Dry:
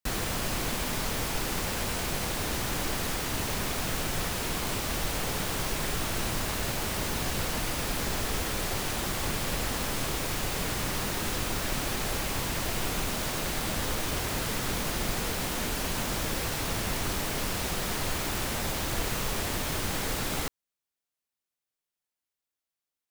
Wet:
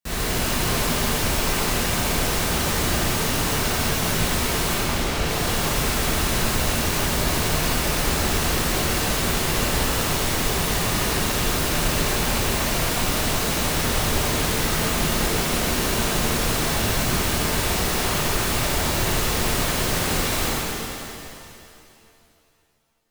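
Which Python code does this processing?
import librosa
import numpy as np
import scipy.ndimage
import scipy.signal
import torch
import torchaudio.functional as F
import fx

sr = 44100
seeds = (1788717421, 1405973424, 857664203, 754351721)

y = fx.air_absorb(x, sr, metres=81.0, at=(4.73, 5.26))
y = fx.rev_shimmer(y, sr, seeds[0], rt60_s=2.6, semitones=7, shimmer_db=-8, drr_db=-9.5)
y = y * 10.0 ** (-2.0 / 20.0)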